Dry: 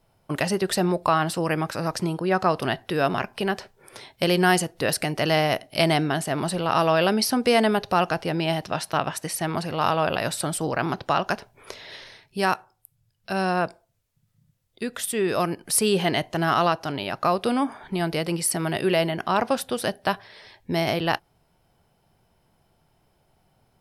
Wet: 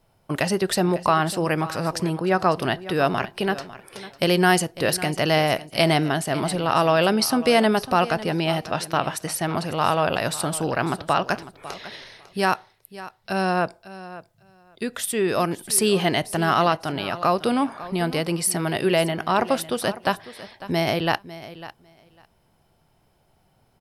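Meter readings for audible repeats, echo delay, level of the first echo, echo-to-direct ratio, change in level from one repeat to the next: 2, 0.55 s, -16.0 dB, -16.0 dB, -16.5 dB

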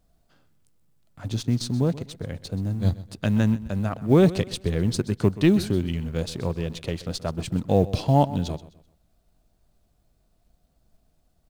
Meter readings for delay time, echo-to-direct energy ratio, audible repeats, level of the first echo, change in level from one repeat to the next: 0.128 s, -16.5 dB, 2, -17.0 dB, -9.5 dB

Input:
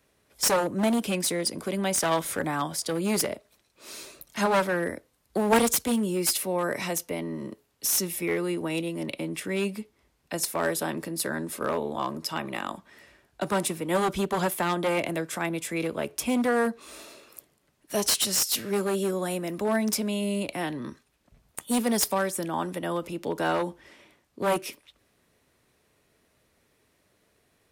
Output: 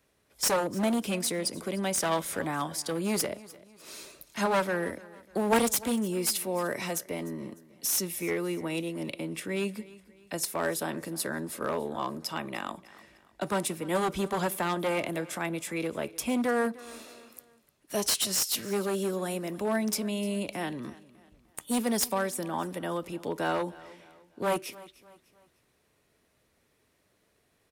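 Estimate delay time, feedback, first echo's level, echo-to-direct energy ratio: 0.301 s, 40%, -20.0 dB, -19.5 dB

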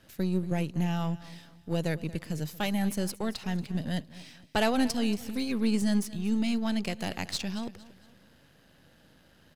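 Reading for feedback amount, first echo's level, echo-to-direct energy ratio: 38%, -18.0 dB, -17.5 dB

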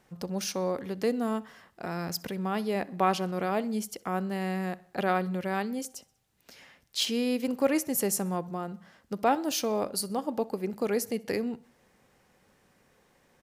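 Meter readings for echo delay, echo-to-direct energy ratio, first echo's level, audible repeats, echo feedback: 64 ms, -22.5 dB, -24.0 dB, 2, 52%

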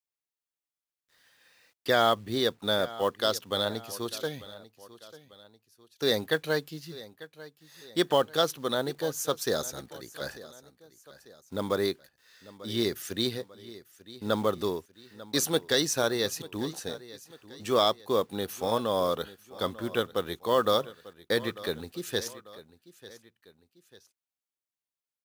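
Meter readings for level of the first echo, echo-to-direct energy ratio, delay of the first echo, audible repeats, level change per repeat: -18.0 dB, -17.0 dB, 0.894 s, 2, -7.0 dB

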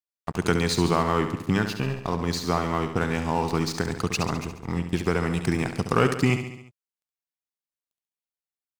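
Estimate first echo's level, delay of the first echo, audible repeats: -9.0 dB, 69 ms, 5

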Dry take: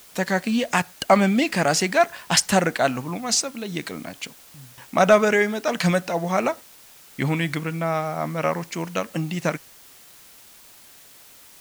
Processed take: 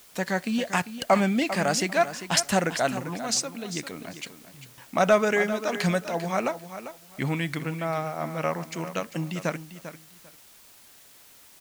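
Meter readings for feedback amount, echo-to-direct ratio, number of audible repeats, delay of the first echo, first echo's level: 19%, -12.0 dB, 2, 0.396 s, -12.0 dB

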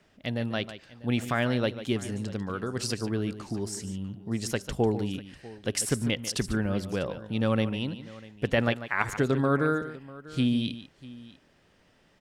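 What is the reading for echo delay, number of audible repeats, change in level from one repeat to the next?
0.145 s, 2, no steady repeat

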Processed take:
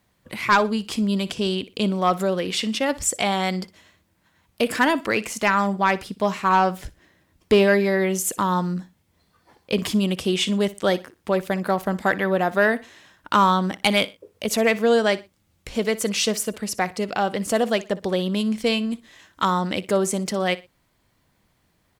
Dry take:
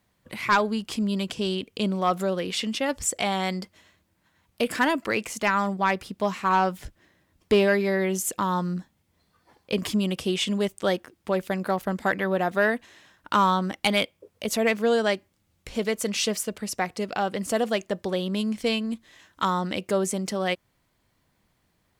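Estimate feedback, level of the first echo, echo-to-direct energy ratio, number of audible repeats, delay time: 28%, -18.5 dB, -18.0 dB, 2, 60 ms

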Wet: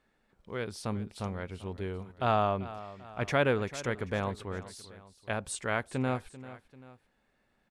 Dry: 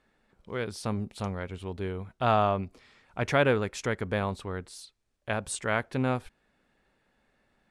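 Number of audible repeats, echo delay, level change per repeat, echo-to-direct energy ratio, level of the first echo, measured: 2, 0.391 s, -6.0 dB, -15.0 dB, -16.0 dB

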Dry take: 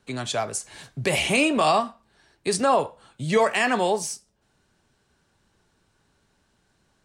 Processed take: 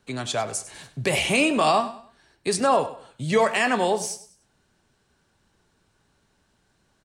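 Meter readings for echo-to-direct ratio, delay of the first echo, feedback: -14.5 dB, 99 ms, 33%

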